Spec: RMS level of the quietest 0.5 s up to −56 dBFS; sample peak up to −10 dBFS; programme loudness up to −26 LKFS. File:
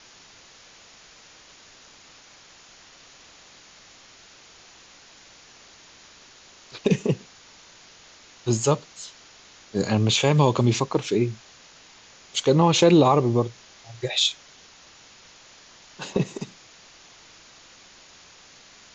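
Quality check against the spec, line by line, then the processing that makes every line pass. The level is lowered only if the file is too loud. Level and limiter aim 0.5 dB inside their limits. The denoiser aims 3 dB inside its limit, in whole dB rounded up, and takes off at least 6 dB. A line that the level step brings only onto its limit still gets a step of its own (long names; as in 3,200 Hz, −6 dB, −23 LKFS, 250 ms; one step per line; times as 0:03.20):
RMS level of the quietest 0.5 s −51 dBFS: out of spec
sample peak −6.0 dBFS: out of spec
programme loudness −22.0 LKFS: out of spec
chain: broadband denoise 6 dB, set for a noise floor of −51 dBFS
level −4.5 dB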